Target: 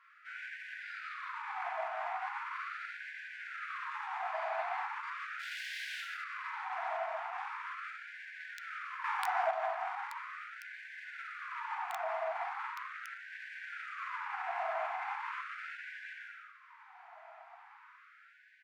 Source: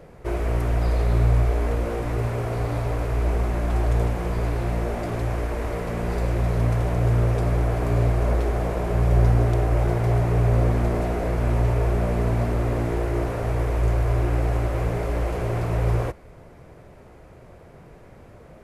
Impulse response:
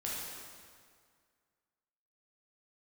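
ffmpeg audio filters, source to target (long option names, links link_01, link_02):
-filter_complex "[0:a]highpass=200,lowpass=2200,asplit=2[link_01][link_02];[link_02]adelay=250,highpass=300,lowpass=3400,asoftclip=type=hard:threshold=-22.5dB,volume=-9dB[link_03];[link_01][link_03]amix=inputs=2:normalize=0,asettb=1/sr,asplit=3[link_04][link_05][link_06];[link_04]atrim=end=5.394[link_07];[link_05]atrim=start=5.39:end=6.01,asetpts=PTS-STARTPTS,afade=type=in:duration=0.004:curve=qsin,afade=type=out:start_time=0.616:duration=0.004:curve=qsin,aeval=exprs='0.0188*(abs(mod(val(0)/0.0188+3,4)-2)-1)':channel_layout=same[link_08];[link_06]atrim=start=6.006[link_09];[link_07][link_08]acrossfade=duration=0.004:curve1=hsin:curve2=qsin[link_10];[link_10][link_09]acrossfade=duration=0.004:curve1=qsin:curve2=hsin[link_11];[1:a]atrim=start_sample=2205,afade=type=out:start_time=0.28:duration=0.01,atrim=end_sample=12789[link_12];[link_11][link_12]afir=irnorm=-1:irlink=0,acrossover=split=310|500|1100[link_13][link_14][link_15][link_16];[link_14]aeval=exprs='(mod(15.8*val(0)+1,2)-1)/15.8':channel_layout=same[link_17];[link_13][link_17][link_15][link_16]amix=inputs=4:normalize=0,asettb=1/sr,asplit=3[link_18][link_19][link_20];[link_18]atrim=end=12.744[link_21];[link_19]atrim=start=12.74:end=13.31,asetpts=PTS-STARTPTS,afade=type=in:duration=0.004:curve=qsin,afade=type=out:start_time=0.566:duration=0.004:curve=qsin,aeval=exprs='val(0)*sin(2*PI*130*n/s)':channel_layout=same[link_22];[link_20]atrim=start=13.306[link_23];[link_21][link_22]acrossfade=duration=0.004:curve1=hsin:curve2=qsin[link_24];[link_24][link_23]acrossfade=duration=0.004:curve1=qsin:curve2=hsin,alimiter=limit=-22.5dB:level=0:latency=1:release=29,asettb=1/sr,asplit=3[link_25][link_26][link_27];[link_25]atrim=end=9.044[link_28];[link_26]atrim=start=9.04:end=9.51,asetpts=PTS-STARTPTS,afade=type=in:duration=0.004:curve=qsin,afade=type=out:start_time=0.466:duration=0.004:curve=qsin,acontrast=73[link_29];[link_27]atrim=start=9.506[link_30];[link_28][link_29]acrossfade=duration=0.004:curve1=hsin:curve2=qsin[link_31];[link_31][link_30]acrossfade=duration=0.004:curve1=qsin:curve2=hsin,afftfilt=real='re*gte(b*sr/1024,630*pow(1500/630,0.5+0.5*sin(2*PI*0.39*pts/sr)))':imag='im*gte(b*sr/1024,630*pow(1500/630,0.5+0.5*sin(2*PI*0.39*pts/sr)))':win_size=1024:overlap=0.75"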